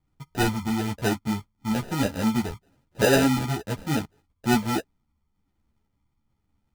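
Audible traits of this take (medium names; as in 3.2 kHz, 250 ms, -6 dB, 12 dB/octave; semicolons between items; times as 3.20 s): phasing stages 12, 1.1 Hz, lowest notch 550–2200 Hz; aliases and images of a low sample rate 1.1 kHz, jitter 0%; a shimmering, thickened sound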